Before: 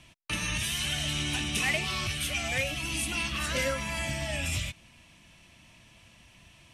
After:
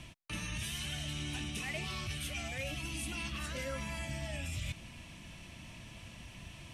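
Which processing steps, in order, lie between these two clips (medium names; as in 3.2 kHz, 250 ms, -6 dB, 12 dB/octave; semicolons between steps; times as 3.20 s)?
bass shelf 420 Hz +5.5 dB; reverse; compression 6:1, threshold -41 dBFS, peak gain reduction 17 dB; reverse; trim +3.5 dB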